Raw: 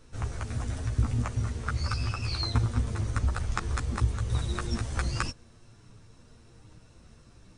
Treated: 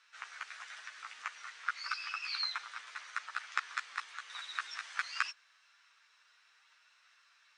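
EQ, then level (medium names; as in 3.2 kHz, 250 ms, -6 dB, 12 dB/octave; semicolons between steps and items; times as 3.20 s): high-pass 1.5 kHz 24 dB/octave; low-pass 5.1 kHz 12 dB/octave; tilt EQ -3 dB/octave; +6.0 dB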